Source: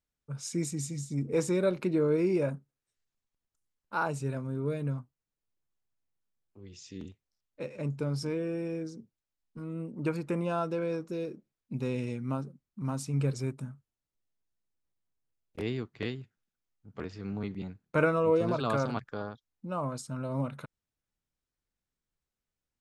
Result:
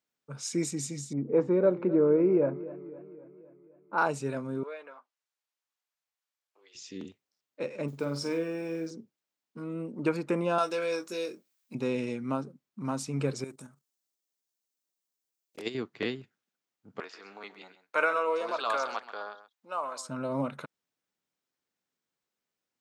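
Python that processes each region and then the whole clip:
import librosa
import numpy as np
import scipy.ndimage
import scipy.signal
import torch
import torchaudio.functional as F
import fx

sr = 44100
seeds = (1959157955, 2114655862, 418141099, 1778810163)

y = fx.chain(x, sr, fx.lowpass(hz=1100.0, slope=12),
    fx.echo_warbled(ms=259, feedback_pct=58, rate_hz=2.8, cents=99, wet_db=-17), at=(1.13, 3.98))
y = fx.chain(y, sr, fx.env_lowpass_down(base_hz=2500.0, full_db=-29.0),
    fx.bessel_highpass(hz=850.0, order=4), at=(4.63, 6.75))
y = fx.chain(y, sr, fx.block_float(bits=7),
    fx.low_shelf(hz=400.0, db=-4.5),
    fx.room_flutter(wall_m=8.4, rt60_s=0.32), at=(7.88, 8.91))
y = fx.chain(y, sr, fx.tilt_eq(slope=4.0),
    fx.doubler(ms=22.0, db=-8.0), at=(10.58, 11.75))
y = fx.chain(y, sr, fx.bass_treble(bass_db=-5, treble_db=13),
    fx.level_steps(step_db=11), at=(13.44, 15.75))
y = fx.chain(y, sr, fx.highpass(hz=790.0, slope=12),
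    fx.echo_single(ms=131, db=-13.0), at=(17.0, 20.09))
y = scipy.signal.sosfilt(scipy.signal.butter(2, 230.0, 'highpass', fs=sr, output='sos'), y)
y = fx.peak_eq(y, sr, hz=11000.0, db=-6.5, octaves=0.64)
y = y * 10.0 ** (4.5 / 20.0)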